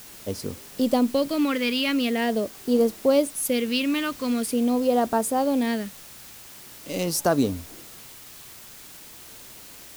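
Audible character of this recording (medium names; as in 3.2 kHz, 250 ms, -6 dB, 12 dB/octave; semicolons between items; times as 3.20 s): phasing stages 2, 0.44 Hz, lowest notch 650–2200 Hz; a quantiser's noise floor 8-bit, dither triangular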